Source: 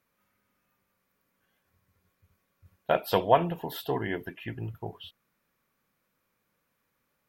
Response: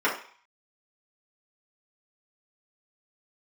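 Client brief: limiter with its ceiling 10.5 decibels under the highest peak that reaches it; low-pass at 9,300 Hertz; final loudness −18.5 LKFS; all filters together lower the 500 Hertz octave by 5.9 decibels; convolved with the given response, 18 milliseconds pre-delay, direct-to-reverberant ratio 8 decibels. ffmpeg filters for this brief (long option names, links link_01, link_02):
-filter_complex "[0:a]lowpass=9300,equalizer=frequency=500:width_type=o:gain=-8,alimiter=limit=-21.5dB:level=0:latency=1,asplit=2[link_01][link_02];[1:a]atrim=start_sample=2205,adelay=18[link_03];[link_02][link_03]afir=irnorm=-1:irlink=0,volume=-23dB[link_04];[link_01][link_04]amix=inputs=2:normalize=0,volume=18dB"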